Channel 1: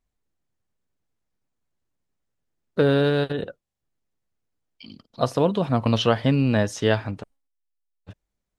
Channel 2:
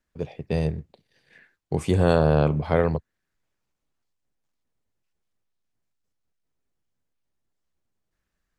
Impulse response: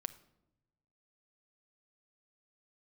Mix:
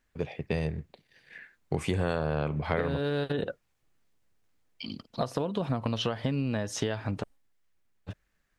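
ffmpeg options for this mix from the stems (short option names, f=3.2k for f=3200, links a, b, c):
-filter_complex "[0:a]dynaudnorm=f=190:g=11:m=4dB,acompressor=threshold=-25dB:ratio=6,volume=2.5dB[a];[1:a]equalizer=f=2k:t=o:w=1.5:g=7.5,volume=-0.5dB[b];[a][b]amix=inputs=2:normalize=0,acompressor=threshold=-26dB:ratio=4"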